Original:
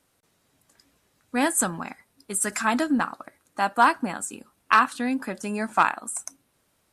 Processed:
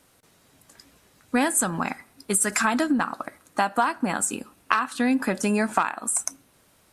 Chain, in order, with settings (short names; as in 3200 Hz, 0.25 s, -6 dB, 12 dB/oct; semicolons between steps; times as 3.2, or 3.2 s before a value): compressor 12:1, threshold -27 dBFS, peak gain reduction 15.5 dB; on a send: reverb RT60 0.85 s, pre-delay 3 ms, DRR 21 dB; on the sum: gain +8.5 dB